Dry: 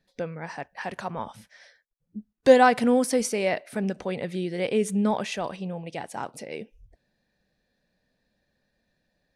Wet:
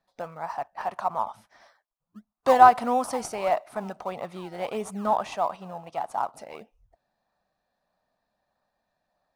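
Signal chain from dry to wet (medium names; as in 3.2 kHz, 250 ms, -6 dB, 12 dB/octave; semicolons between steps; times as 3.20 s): bass shelf 460 Hz -5.5 dB; in parallel at -11.5 dB: decimation with a swept rate 27×, swing 100% 1.6 Hz; on the sum: high-order bell 910 Hz +14.5 dB 1.3 oct; trim -7 dB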